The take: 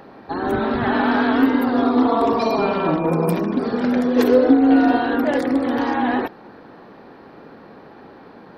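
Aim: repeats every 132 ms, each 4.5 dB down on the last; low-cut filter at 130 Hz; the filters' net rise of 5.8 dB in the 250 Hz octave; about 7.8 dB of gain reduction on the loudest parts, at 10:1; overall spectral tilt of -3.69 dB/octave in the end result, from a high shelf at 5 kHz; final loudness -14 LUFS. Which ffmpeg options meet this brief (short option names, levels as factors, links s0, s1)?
-af "highpass=130,equalizer=f=250:t=o:g=6.5,highshelf=f=5000:g=-3.5,acompressor=threshold=0.251:ratio=10,aecho=1:1:132|264|396|528|660|792|924|1056|1188:0.596|0.357|0.214|0.129|0.0772|0.0463|0.0278|0.0167|0.01,volume=1.33"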